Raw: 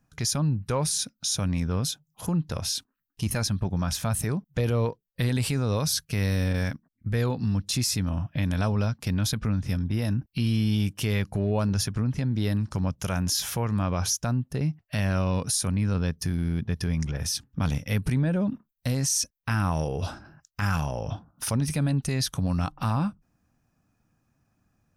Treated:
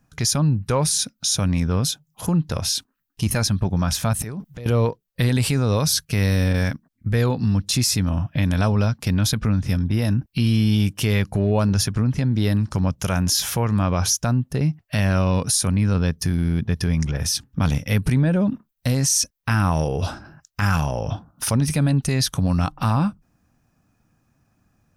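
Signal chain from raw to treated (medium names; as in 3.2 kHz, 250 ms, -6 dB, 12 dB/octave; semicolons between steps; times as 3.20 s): 4.13–4.66 s: compressor with a negative ratio -36 dBFS, ratio -1; trim +6 dB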